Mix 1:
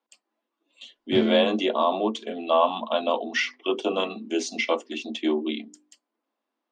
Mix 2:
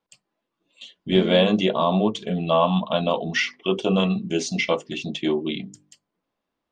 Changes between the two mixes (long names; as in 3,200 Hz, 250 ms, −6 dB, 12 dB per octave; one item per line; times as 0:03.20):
speech: remove Chebyshev high-pass with heavy ripple 220 Hz, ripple 3 dB
background −4.5 dB